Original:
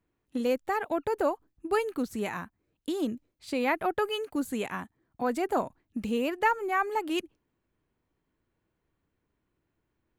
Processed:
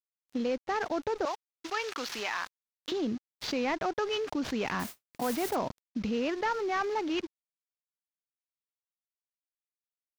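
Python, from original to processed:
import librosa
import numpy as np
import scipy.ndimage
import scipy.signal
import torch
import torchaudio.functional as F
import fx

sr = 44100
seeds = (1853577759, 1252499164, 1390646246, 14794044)

y = fx.cvsd(x, sr, bps=32000)
y = fx.bessel_highpass(y, sr, hz=1200.0, order=2, at=(1.25, 2.92))
y = np.sign(y) * np.maximum(np.abs(y) - 10.0 ** (-59.5 / 20.0), 0.0)
y = fx.mod_noise(y, sr, seeds[0], snr_db=11, at=(4.79, 5.54), fade=0.02)
y = fx.env_flatten(y, sr, amount_pct=70)
y = y * librosa.db_to_amplitude(-6.0)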